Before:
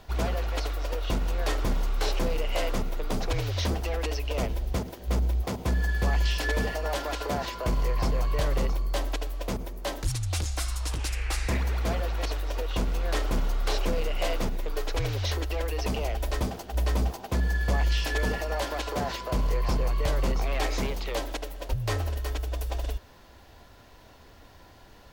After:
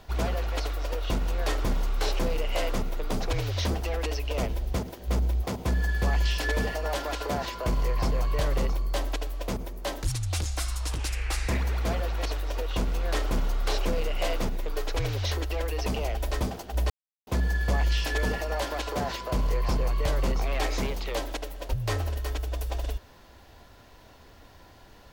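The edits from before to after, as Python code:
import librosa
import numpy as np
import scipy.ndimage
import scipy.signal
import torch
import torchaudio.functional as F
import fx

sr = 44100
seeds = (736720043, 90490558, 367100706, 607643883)

y = fx.edit(x, sr, fx.silence(start_s=16.9, length_s=0.37), tone=tone)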